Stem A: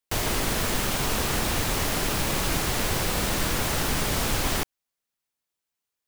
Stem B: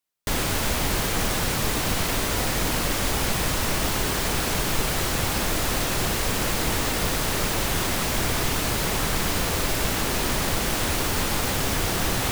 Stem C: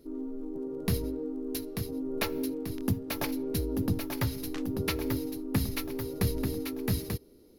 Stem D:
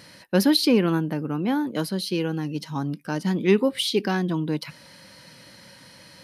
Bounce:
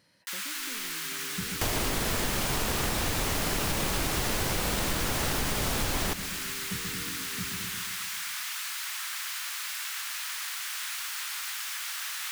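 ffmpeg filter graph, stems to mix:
-filter_complex "[0:a]adelay=1500,volume=2dB,asplit=2[a][b];[b]volume=-19dB[c];[1:a]highpass=f=1.3k:w=0.5412,highpass=f=1.3k:w=1.3066,volume=-7dB[d];[2:a]equalizer=f=180:t=o:w=0.68:g=14,adelay=500,volume=-18dB,asplit=2[e][f];[f]volume=-4dB[g];[3:a]acompressor=threshold=-30dB:ratio=6,volume=-18dB[h];[c][g]amix=inputs=2:normalize=0,aecho=0:1:132|264|396|528|660|792|924|1056|1188:1|0.57|0.325|0.185|0.106|0.0602|0.0343|0.0195|0.0111[i];[a][d][e][h][i]amix=inputs=5:normalize=0,acompressor=threshold=-25dB:ratio=6"

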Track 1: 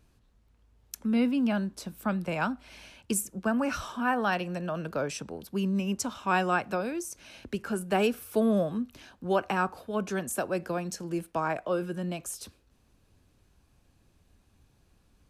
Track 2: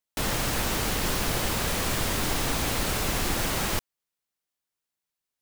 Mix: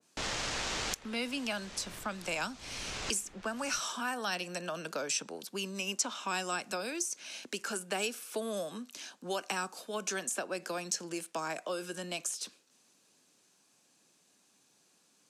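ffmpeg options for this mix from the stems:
-filter_complex "[0:a]highpass=f=160:w=0.5412,highpass=f=160:w=1.3066,aemphasis=mode=production:type=bsi,volume=-1dB,asplit=2[a][b];[1:a]adynamicsmooth=sensitivity=4.5:basefreq=3.7k,volume=-6.5dB[c];[b]apad=whole_len=238829[d];[c][d]sidechaincompress=threshold=-53dB:ratio=3:attack=10:release=359[e];[a][e]amix=inputs=2:normalize=0,acrossover=split=370|3900[f][g][h];[f]acompressor=threshold=-44dB:ratio=4[i];[g]acompressor=threshold=-36dB:ratio=4[j];[h]acompressor=threshold=-42dB:ratio=4[k];[i][j][k]amix=inputs=3:normalize=0,lowpass=f=7.1k:t=q:w=1.6,adynamicequalizer=threshold=0.00355:dfrequency=1600:dqfactor=0.7:tfrequency=1600:tqfactor=0.7:attack=5:release=100:ratio=0.375:range=2:mode=boostabove:tftype=highshelf"

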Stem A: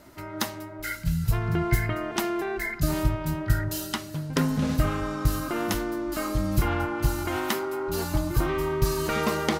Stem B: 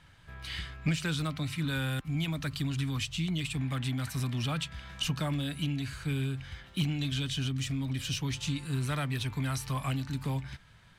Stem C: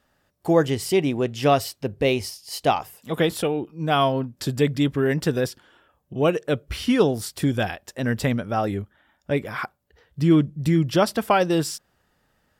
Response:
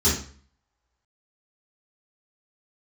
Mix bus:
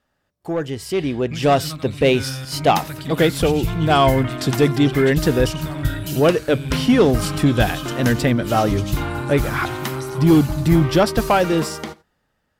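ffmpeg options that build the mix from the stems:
-filter_complex "[0:a]adelay=2350,volume=-10dB,asplit=2[a][b];[b]volume=-20.5dB[c];[1:a]adelay=450,volume=-10dB,asplit=2[d][e];[e]volume=-6.5dB[f];[2:a]highshelf=f=8.2k:g=-5.5,asoftclip=type=tanh:threshold=-12dB,volume=-4dB[g];[c][f]amix=inputs=2:normalize=0,aecho=0:1:90:1[h];[a][d][g][h]amix=inputs=4:normalize=0,dynaudnorm=f=190:g=13:m=11dB"

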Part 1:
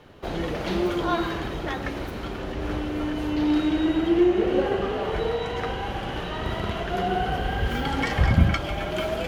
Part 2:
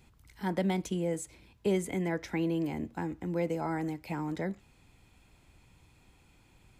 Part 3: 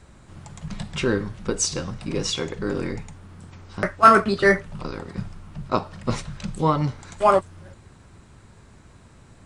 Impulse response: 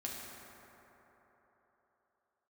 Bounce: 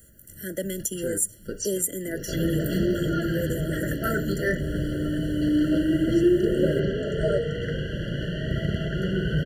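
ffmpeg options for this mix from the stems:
-filter_complex "[0:a]equalizer=f=150:t=o:w=0.55:g=14,adelay=2050,volume=-1dB[a];[1:a]highpass=260,highshelf=f=11k:g=4,aexciter=amount=11.3:drive=3.2:freq=6.5k,volume=2.5dB,asplit=2[b][c];[2:a]volume=-7dB[d];[c]apad=whole_len=416787[e];[d][e]sidechaincompress=threshold=-29dB:ratio=8:attack=6.3:release=287[f];[a][b][f]amix=inputs=3:normalize=0,afftfilt=real='re*eq(mod(floor(b*sr/1024/680),2),0)':imag='im*eq(mod(floor(b*sr/1024/680),2),0)':win_size=1024:overlap=0.75"

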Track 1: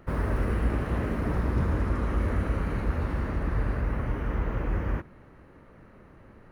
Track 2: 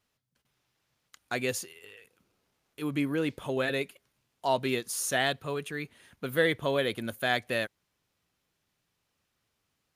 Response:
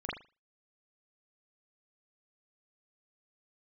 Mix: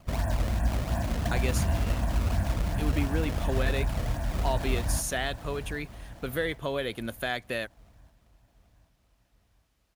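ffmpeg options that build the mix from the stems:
-filter_complex "[0:a]equalizer=f=680:w=7:g=11,aecho=1:1:1.2:0.91,acrusher=samples=21:mix=1:aa=0.000001:lfo=1:lforange=33.6:lforate=2.8,volume=-5.5dB,asplit=2[a][b];[b]volume=-10.5dB[c];[1:a]acompressor=threshold=-33dB:ratio=2,volume=2dB[d];[c]aecho=0:1:775|1550|2325|3100|3875|4650|5425:1|0.51|0.26|0.133|0.0677|0.0345|0.0176[e];[a][d][e]amix=inputs=3:normalize=0"

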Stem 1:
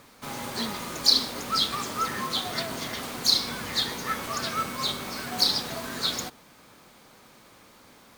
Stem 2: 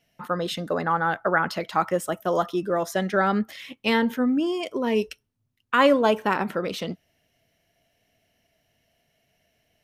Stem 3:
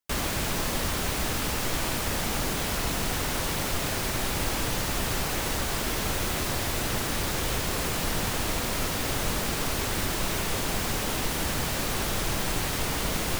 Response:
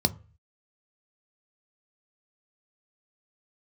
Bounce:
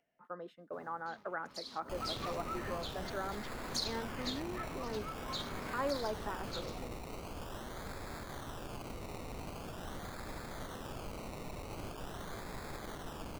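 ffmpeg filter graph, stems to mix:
-filter_complex "[0:a]afwtdn=0.0141,acompressor=threshold=-27dB:ratio=4,tremolo=f=0.57:d=0.5,adelay=500,volume=-7.5dB,afade=t=in:st=1.38:d=0.48:silence=0.316228[a];[1:a]acrossover=split=240 2000:gain=0.224 1 0.1[b][c][d];[b][c][d]amix=inputs=3:normalize=0,volume=-17dB,asplit=2[e][f];[2:a]acrusher=samples=21:mix=1:aa=0.000001:lfo=1:lforange=12.6:lforate=0.44,adelay=1800,volume=-16dB[g];[f]apad=whole_len=382473[h];[a][h]sidechaincompress=threshold=-41dB:ratio=8:attack=40:release=471[i];[i][e][g]amix=inputs=3:normalize=0,agate=range=-33dB:threshold=-47dB:ratio=3:detection=peak,acompressor=mode=upward:threshold=-52dB:ratio=2.5"

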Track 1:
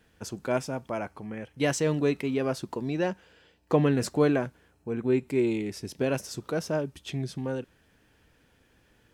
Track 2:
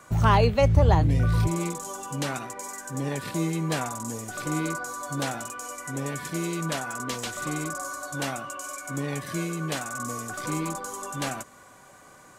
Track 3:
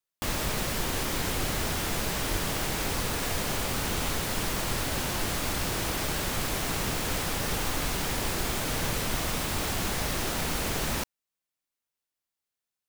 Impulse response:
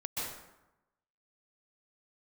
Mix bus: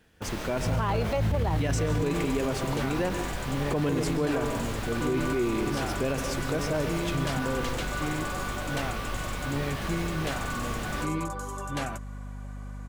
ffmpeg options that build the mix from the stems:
-filter_complex "[0:a]volume=-0.5dB,asplit=2[a][b];[b]volume=-9.5dB[c];[1:a]bass=f=250:g=0,treble=f=4k:g=-7,aeval=exprs='val(0)+0.0158*(sin(2*PI*50*n/s)+sin(2*PI*2*50*n/s)/2+sin(2*PI*3*50*n/s)/3+sin(2*PI*4*50*n/s)/4+sin(2*PI*5*50*n/s)/5)':c=same,adelay=550,volume=-1dB[d];[2:a]acrossover=split=4000[e][f];[f]acompressor=threshold=-43dB:ratio=4:attack=1:release=60[g];[e][g]amix=inputs=2:normalize=0,flanger=delay=22.5:depth=4.8:speed=1.5,volume=-1.5dB[h];[3:a]atrim=start_sample=2205[i];[c][i]afir=irnorm=-1:irlink=0[j];[a][d][h][j]amix=inputs=4:normalize=0,alimiter=limit=-19dB:level=0:latency=1:release=32"

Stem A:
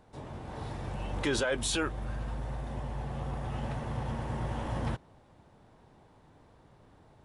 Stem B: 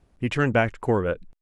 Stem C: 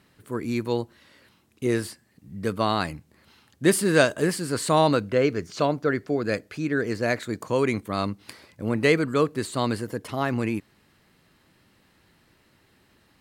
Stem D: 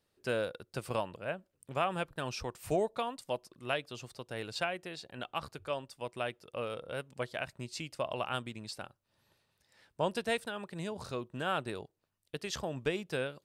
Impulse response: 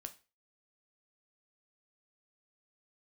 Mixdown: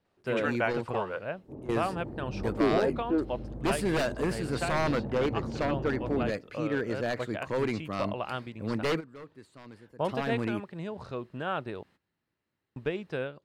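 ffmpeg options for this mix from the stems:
-filter_complex "[0:a]adynamicsmooth=sensitivity=1:basefreq=520,equalizer=f=330:t=o:w=1.8:g=14,adelay=1350,volume=-6.5dB[a];[1:a]highpass=630,adelay=50,volume=-5dB[b];[2:a]highpass=58,aeval=exprs='0.15*(abs(mod(val(0)/0.15+3,4)-2)-1)':c=same,volume=-5dB[c];[3:a]aemphasis=mode=reproduction:type=50fm,volume=1.5dB,asplit=3[d][e][f];[d]atrim=end=11.83,asetpts=PTS-STARTPTS,afade=t=out:st=11.826:d=0.004:c=hsin[g];[e]atrim=start=11.83:end=12.76,asetpts=PTS-STARTPTS,volume=0[h];[f]atrim=start=12.76,asetpts=PTS-STARTPTS,afade=t=in:d=0.004:c=hsin[i];[g][h][i]concat=n=3:v=0:a=1,asplit=2[j][k];[k]apad=whole_len=582386[l];[c][l]sidechaingate=range=-17dB:threshold=-58dB:ratio=16:detection=peak[m];[a][b][m][j]amix=inputs=4:normalize=0,highshelf=f=5.3k:g=-11"

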